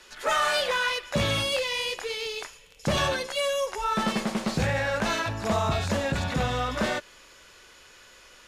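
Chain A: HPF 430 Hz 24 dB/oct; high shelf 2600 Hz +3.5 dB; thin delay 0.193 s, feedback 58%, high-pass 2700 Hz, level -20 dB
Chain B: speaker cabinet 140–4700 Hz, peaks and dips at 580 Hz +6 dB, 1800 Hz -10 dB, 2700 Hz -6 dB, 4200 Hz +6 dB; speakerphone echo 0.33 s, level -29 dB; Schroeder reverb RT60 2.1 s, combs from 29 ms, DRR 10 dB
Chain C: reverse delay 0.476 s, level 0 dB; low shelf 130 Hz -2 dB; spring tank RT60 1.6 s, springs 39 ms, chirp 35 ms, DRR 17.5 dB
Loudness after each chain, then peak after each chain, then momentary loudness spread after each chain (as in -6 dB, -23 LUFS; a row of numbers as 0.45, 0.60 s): -26.5, -26.0, -24.5 LUFS; -12.5, -12.0, -11.0 dBFS; 7, 9, 7 LU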